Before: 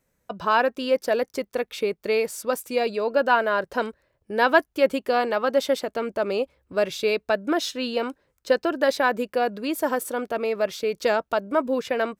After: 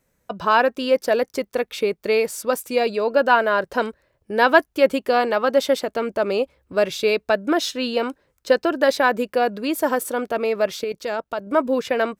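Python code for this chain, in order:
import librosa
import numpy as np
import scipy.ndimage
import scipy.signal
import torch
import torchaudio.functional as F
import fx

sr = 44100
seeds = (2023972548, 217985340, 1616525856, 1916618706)

y = fx.level_steps(x, sr, step_db=14, at=(10.84, 11.47))
y = F.gain(torch.from_numpy(y), 3.5).numpy()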